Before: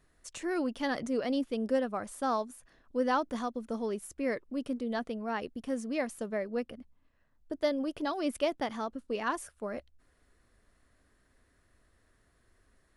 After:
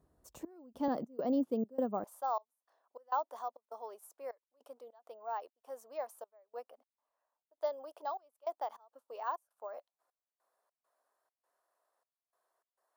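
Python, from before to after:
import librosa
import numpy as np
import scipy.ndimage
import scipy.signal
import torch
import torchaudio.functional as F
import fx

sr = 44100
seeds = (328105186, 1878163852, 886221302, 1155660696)

y = fx.curve_eq(x, sr, hz=(930.0, 2000.0, 9700.0), db=(0, -20, -8))
y = fx.step_gate(y, sr, bpm=101, pattern='xxx..xx.xxx.x', floor_db=-24.0, edge_ms=4.5)
y = fx.highpass(y, sr, hz=fx.steps((0.0, 46.0), (0.88, 150.0), (2.04, 660.0)), slope=24)
y = np.repeat(y[::2], 2)[:len(y)]
y = fx.high_shelf(y, sr, hz=9800.0, db=-3.0)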